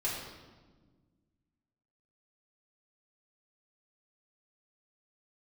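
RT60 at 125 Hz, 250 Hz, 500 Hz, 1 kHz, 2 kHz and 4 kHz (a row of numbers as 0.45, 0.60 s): 2.3, 2.2, 1.6, 1.2, 1.1, 1.0 s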